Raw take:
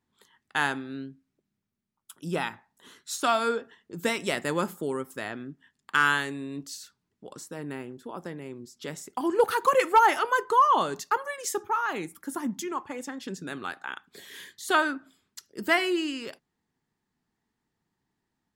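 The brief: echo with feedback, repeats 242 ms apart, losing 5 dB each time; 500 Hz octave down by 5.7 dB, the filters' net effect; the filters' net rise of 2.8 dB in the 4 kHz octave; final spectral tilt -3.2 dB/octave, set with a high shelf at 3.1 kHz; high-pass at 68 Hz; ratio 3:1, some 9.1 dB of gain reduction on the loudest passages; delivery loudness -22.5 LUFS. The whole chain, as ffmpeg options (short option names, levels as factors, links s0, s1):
-af "highpass=68,equalizer=f=500:t=o:g=-7,highshelf=f=3100:g=-5.5,equalizer=f=4000:t=o:g=8,acompressor=threshold=0.0355:ratio=3,aecho=1:1:242|484|726|968|1210|1452|1694:0.562|0.315|0.176|0.0988|0.0553|0.031|0.0173,volume=3.55"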